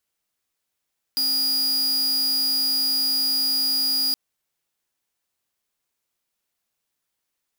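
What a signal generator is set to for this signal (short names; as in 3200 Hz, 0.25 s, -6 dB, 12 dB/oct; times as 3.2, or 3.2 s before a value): tone square 4870 Hz -22 dBFS 2.97 s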